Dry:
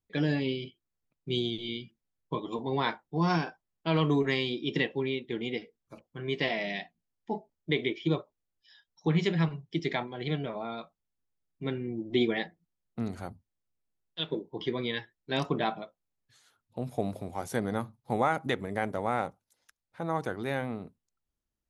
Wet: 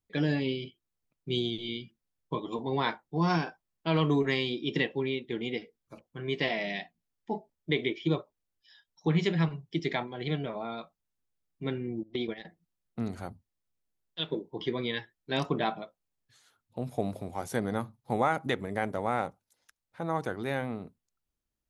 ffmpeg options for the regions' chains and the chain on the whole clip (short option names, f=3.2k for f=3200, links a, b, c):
-filter_complex "[0:a]asettb=1/sr,asplit=3[a][b][c];[a]atrim=end=12.034[d];[b]atrim=start=12.03:end=12.45,asetpts=PTS-STARTPTS,afade=t=in:d=0.004:c=qsin,afade=t=out:st=0.416:d=0.004:c=qsin,agate=range=-16dB:threshold=-29dB:ratio=16:release=100:detection=peak,highshelf=f=6.5k:t=q:w=3:g=-6.5,acompressor=threshold=-28dB:ratio=6:attack=3.2:release=140:knee=1:detection=peak[e];[c]atrim=start=12.446[f];[d][e]acrossfade=d=0.004:c1=hsin:c2=qsin[g];[g][f]acrossfade=d=0.004:c1=qsin:c2=hsin"